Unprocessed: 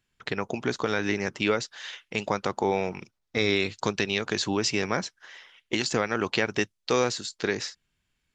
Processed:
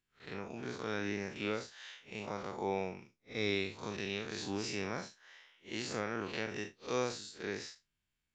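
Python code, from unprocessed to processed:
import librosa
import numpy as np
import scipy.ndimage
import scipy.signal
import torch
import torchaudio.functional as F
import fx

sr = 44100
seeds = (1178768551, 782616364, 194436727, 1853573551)

y = fx.spec_blur(x, sr, span_ms=111.0)
y = y * librosa.db_to_amplitude(-8.5)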